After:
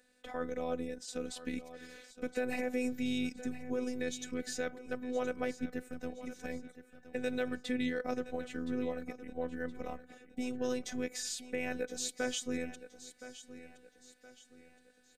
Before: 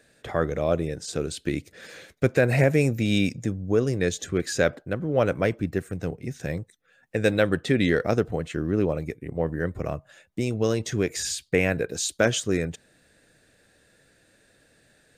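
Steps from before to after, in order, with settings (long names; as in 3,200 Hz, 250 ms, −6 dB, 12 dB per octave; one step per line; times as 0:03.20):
brickwall limiter −14 dBFS, peak gain reduction 7 dB
phases set to zero 250 Hz
repeating echo 1,019 ms, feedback 39%, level −14 dB
level −7.5 dB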